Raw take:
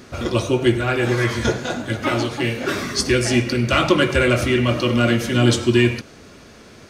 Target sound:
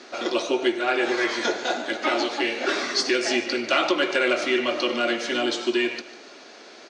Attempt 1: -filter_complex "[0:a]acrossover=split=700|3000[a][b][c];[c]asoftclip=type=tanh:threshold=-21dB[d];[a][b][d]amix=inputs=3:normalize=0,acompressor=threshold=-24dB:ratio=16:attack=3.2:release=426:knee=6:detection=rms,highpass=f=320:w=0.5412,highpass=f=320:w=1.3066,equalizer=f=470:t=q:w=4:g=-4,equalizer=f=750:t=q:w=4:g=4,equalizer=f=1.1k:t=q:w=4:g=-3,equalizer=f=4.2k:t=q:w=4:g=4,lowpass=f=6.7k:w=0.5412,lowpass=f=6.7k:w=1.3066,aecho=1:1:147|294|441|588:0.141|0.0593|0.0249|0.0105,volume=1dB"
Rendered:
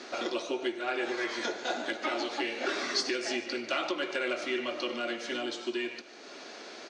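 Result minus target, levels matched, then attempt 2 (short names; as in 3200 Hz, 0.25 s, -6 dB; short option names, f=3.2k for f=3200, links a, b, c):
compressor: peak gain reduction +11 dB
-filter_complex "[0:a]acrossover=split=700|3000[a][b][c];[c]asoftclip=type=tanh:threshold=-21dB[d];[a][b][d]amix=inputs=3:normalize=0,acompressor=threshold=-12.5dB:ratio=16:attack=3.2:release=426:knee=6:detection=rms,highpass=f=320:w=0.5412,highpass=f=320:w=1.3066,equalizer=f=470:t=q:w=4:g=-4,equalizer=f=750:t=q:w=4:g=4,equalizer=f=1.1k:t=q:w=4:g=-3,equalizer=f=4.2k:t=q:w=4:g=4,lowpass=f=6.7k:w=0.5412,lowpass=f=6.7k:w=1.3066,aecho=1:1:147|294|441|588:0.141|0.0593|0.0249|0.0105,volume=1dB"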